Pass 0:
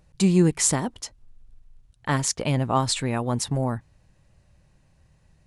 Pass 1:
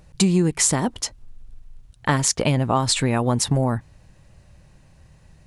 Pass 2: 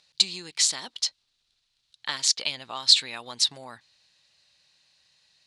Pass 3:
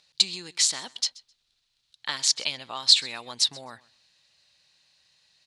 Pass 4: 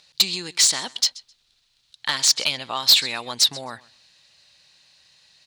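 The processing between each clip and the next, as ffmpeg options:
ffmpeg -i in.wav -af "acompressor=threshold=-24dB:ratio=6,volume=8.5dB" out.wav
ffmpeg -i in.wav -af "bandpass=frequency=4100:width_type=q:width=3.6:csg=0,volume=9dB" out.wav
ffmpeg -i in.wav -af "aecho=1:1:130|260:0.075|0.0127" out.wav
ffmpeg -i in.wav -af "asoftclip=type=tanh:threshold=-16.5dB,volume=8dB" out.wav

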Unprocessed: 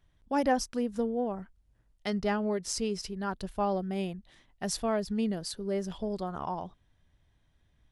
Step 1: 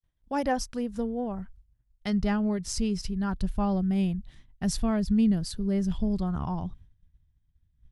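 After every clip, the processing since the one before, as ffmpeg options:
ffmpeg -i in.wav -af "agate=range=-33dB:threshold=-56dB:ratio=3:detection=peak,asubboost=boost=8.5:cutoff=170" out.wav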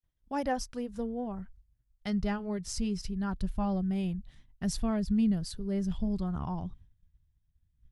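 ffmpeg -i in.wav -af "flanger=delay=0:depth=2.4:regen=-73:speed=0.62:shape=triangular" out.wav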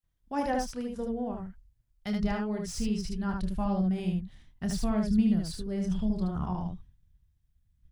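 ffmpeg -i in.wav -filter_complex "[0:a]acrossover=split=570|2600[link_01][link_02][link_03];[link_03]asoftclip=type=hard:threshold=-38dB[link_04];[link_01][link_02][link_04]amix=inputs=3:normalize=0,aecho=1:1:28|75:0.398|0.708" out.wav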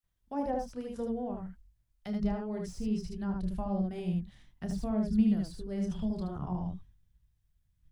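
ffmpeg -i in.wav -filter_complex "[0:a]acrossover=split=410|790[link_01][link_02][link_03];[link_01]flanger=delay=17.5:depth=4.9:speed=0.98[link_04];[link_03]acompressor=threshold=-51dB:ratio=10[link_05];[link_04][link_02][link_05]amix=inputs=3:normalize=0" out.wav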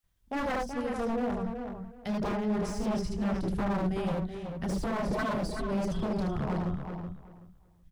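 ffmpeg -i in.wav -filter_complex "[0:a]aeval=exprs='0.0251*(abs(mod(val(0)/0.0251+3,4)-2)-1)':channel_layout=same,asplit=2[link_01][link_02];[link_02]adelay=377,lowpass=frequency=3300:poles=1,volume=-6.5dB,asplit=2[link_03][link_04];[link_04]adelay=377,lowpass=frequency=3300:poles=1,volume=0.21,asplit=2[link_05][link_06];[link_06]adelay=377,lowpass=frequency=3300:poles=1,volume=0.21[link_07];[link_01][link_03][link_05][link_07]amix=inputs=4:normalize=0,volume=6dB" out.wav

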